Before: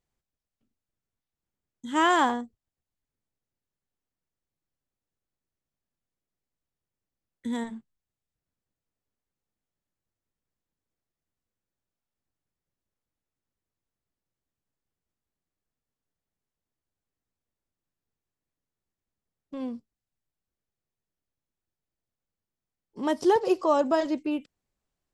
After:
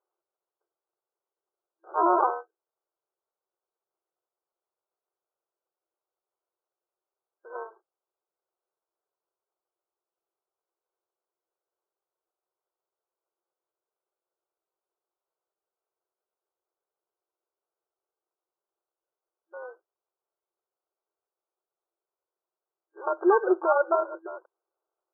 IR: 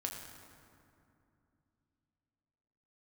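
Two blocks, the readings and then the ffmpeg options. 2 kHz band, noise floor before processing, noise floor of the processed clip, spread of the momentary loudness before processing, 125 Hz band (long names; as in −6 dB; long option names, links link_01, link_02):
−4.0 dB, below −85 dBFS, below −85 dBFS, 20 LU, can't be measured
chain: -af "acrusher=samples=22:mix=1:aa=0.000001,afftfilt=real='re*between(b*sr/4096,330,1600)':imag='im*between(b*sr/4096,330,1600)':win_size=4096:overlap=0.75,volume=1.5dB"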